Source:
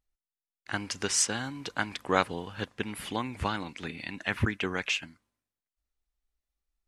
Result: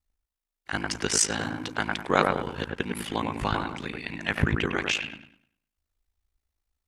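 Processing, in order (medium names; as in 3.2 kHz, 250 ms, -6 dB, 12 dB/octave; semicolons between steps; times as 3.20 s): feedback echo behind a low-pass 101 ms, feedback 32%, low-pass 2.1 kHz, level -3 dB; ring modulator 27 Hz; trim +5.5 dB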